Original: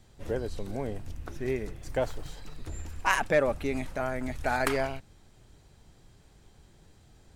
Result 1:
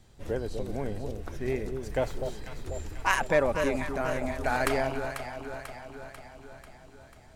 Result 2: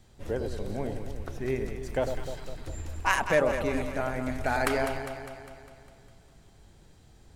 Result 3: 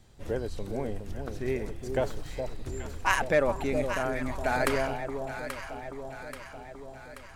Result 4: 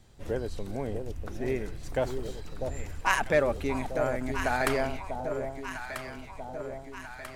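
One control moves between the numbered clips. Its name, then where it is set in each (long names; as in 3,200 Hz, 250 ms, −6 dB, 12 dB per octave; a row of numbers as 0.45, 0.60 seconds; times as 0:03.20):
delay that swaps between a low-pass and a high-pass, delay time: 246, 101, 416, 645 milliseconds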